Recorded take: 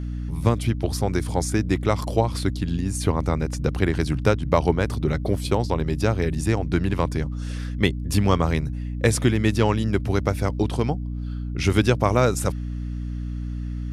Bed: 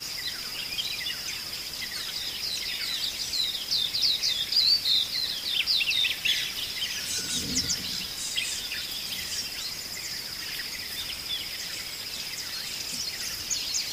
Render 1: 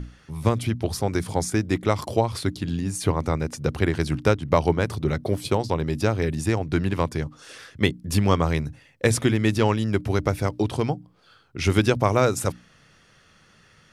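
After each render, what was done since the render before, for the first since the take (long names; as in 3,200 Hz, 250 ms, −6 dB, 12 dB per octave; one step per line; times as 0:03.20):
mains-hum notches 60/120/180/240/300 Hz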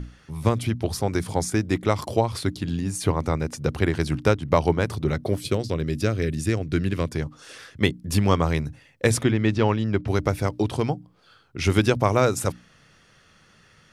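0:05.39–0:07.12: parametric band 870 Hz −15 dB 0.56 octaves
0:09.23–0:10.08: high-frequency loss of the air 130 metres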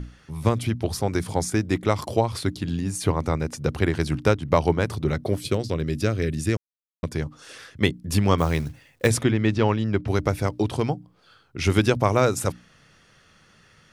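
0:06.57–0:07.03: silence
0:08.38–0:09.08: log-companded quantiser 6 bits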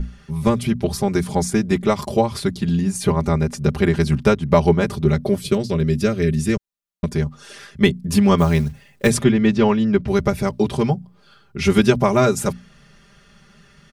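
low-shelf EQ 210 Hz +8.5 dB
comb filter 5 ms, depth 100%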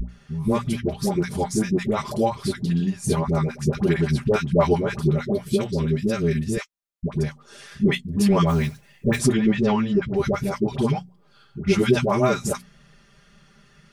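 flanger 1.8 Hz, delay 4.9 ms, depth 4 ms, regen −41%
all-pass dispersion highs, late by 89 ms, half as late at 670 Hz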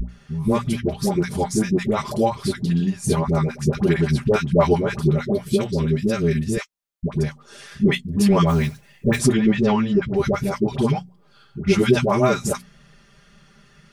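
level +2 dB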